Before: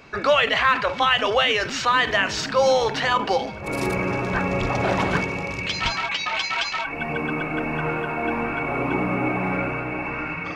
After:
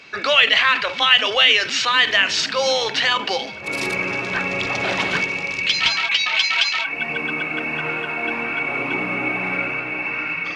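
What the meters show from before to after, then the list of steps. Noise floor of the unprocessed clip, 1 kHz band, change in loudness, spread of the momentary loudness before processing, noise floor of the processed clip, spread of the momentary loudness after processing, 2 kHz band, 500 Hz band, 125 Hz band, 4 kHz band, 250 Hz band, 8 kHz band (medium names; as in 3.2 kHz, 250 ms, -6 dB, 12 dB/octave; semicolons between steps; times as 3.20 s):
-32 dBFS, -2.0 dB, +4.0 dB, 8 LU, -30 dBFS, 9 LU, +5.5 dB, -3.0 dB, -7.5 dB, +9.0 dB, -4.0 dB, +5.0 dB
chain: frequency weighting D; trim -2.5 dB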